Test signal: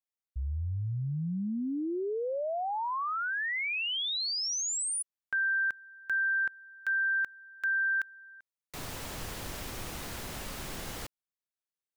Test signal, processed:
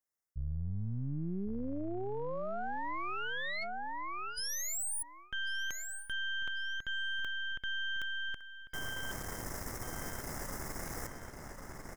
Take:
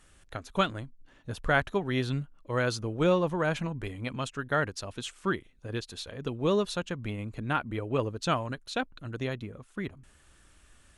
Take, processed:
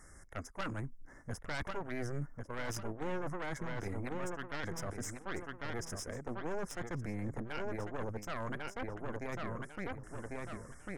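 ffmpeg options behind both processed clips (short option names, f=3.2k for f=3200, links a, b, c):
-filter_complex "[0:a]afftfilt=real='re*(1-between(b*sr/4096,2200,4900))':imag='im*(1-between(b*sr/4096,2200,4900))':win_size=4096:overlap=0.75,aeval=exprs='0.266*(cos(1*acos(clip(val(0)/0.266,-1,1)))-cos(1*PI/2))+0.0944*(cos(6*acos(clip(val(0)/0.266,-1,1)))-cos(6*PI/2))':c=same,asplit=2[a][b];[b]adelay=1097,lowpass=f=4.7k:p=1,volume=-10dB,asplit=2[c][d];[d]adelay=1097,lowpass=f=4.7k:p=1,volume=0.18,asplit=2[e][f];[f]adelay=1097,lowpass=f=4.7k:p=1,volume=0.18[g];[a][c][e][g]amix=inputs=4:normalize=0,areverse,acompressor=threshold=-34dB:ratio=10:attack=0.28:release=223:knee=6:detection=peak,areverse,volume=3.5dB"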